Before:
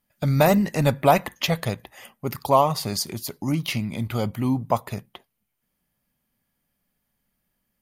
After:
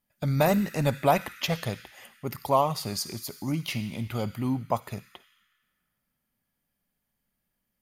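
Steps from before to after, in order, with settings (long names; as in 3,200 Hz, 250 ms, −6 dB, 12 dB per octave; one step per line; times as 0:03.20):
on a send: Butterworth high-pass 1,300 Hz 96 dB per octave + convolution reverb RT60 2.2 s, pre-delay 46 ms, DRR 11 dB
on the sum: level −5 dB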